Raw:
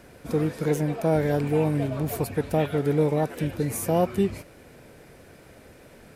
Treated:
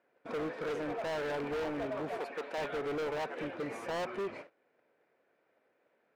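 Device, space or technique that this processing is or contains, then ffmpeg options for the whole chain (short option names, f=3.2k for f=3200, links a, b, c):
walkie-talkie: -filter_complex "[0:a]highpass=440,lowpass=2.2k,asoftclip=type=hard:threshold=-33dB,agate=range=-20dB:threshold=-49dB:ratio=16:detection=peak,asettb=1/sr,asplit=3[a][b][c];[a]atrim=end=2.184[d];[b]atrim=start=2.18:end=2.58,asetpts=PTS-STARTPTS,afade=t=in:d=0.004:c=qsin,afade=t=out:st=0.396:d=0.004:c=qsin,highpass=310[e];[c]atrim=start=2.576[f];[d][e]acrossfade=d=0.004:c1=hsin:c2=qsin[g];[g][f]acrossfade=d=0.004:c1=qsin:c2=hsin"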